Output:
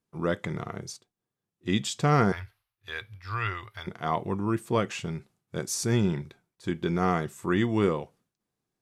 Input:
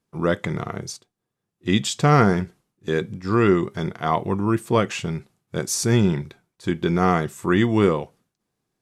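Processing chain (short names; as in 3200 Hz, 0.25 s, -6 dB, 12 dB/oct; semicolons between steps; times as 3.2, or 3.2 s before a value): 2.32–3.87 EQ curve 110 Hz 0 dB, 160 Hz -28 dB, 390 Hz -20 dB, 640 Hz -7 dB, 1200 Hz 0 dB, 2400 Hz +4 dB, 4500 Hz +2 dB, 7400 Hz -12 dB, 12000 Hz +5 dB; gain -6.5 dB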